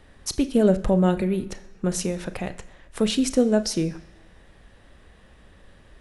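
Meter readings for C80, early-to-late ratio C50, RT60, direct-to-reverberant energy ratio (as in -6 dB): 18.0 dB, 15.5 dB, 1.1 s, 11.0 dB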